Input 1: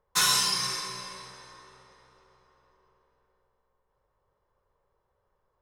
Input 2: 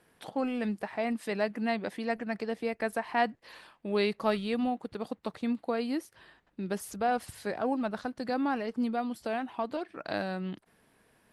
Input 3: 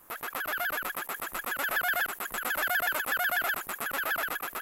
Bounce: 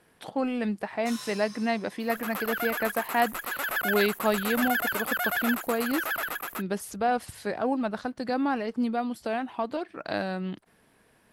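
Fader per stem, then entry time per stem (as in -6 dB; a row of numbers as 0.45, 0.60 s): -18.0, +3.0, 0.0 dB; 0.90, 0.00, 2.00 s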